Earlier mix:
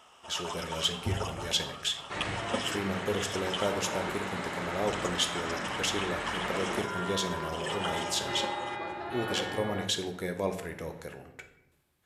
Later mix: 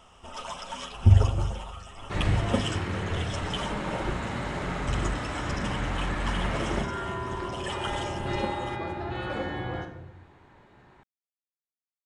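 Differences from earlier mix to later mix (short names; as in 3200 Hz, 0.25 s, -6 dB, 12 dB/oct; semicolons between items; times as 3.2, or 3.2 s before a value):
speech: muted; master: remove HPF 610 Hz 6 dB/oct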